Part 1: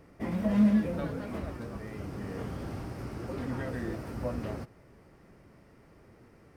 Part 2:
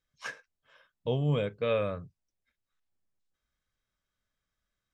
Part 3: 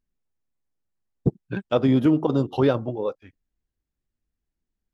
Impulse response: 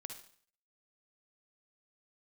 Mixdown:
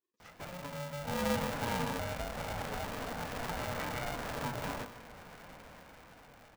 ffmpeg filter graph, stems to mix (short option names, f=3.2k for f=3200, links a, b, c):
-filter_complex "[0:a]acompressor=threshold=-32dB:ratio=6,bandpass=f=1.4k:t=q:w=0.59:csg=0,adelay=200,volume=1.5dB,asplit=3[a][b][c];[b]volume=-8dB[d];[c]volume=-18.5dB[e];[1:a]volume=-17.5dB,asplit=2[f][g];[g]volume=-8.5dB[h];[2:a]highpass=f=250:w=0.5412,highpass=f=250:w=1.3066,adelay=150,volume=-19dB[i];[a][i]amix=inputs=2:normalize=0,acompressor=threshold=-52dB:ratio=3,volume=0dB[j];[3:a]atrim=start_sample=2205[k];[d][k]afir=irnorm=-1:irlink=0[l];[e][h]amix=inputs=2:normalize=0,aecho=0:1:153:1[m];[f][j][l][m]amix=inputs=4:normalize=0,lowshelf=f=190:g=10.5,dynaudnorm=f=210:g=11:m=8dB,aeval=exprs='val(0)*sgn(sin(2*PI*360*n/s))':c=same"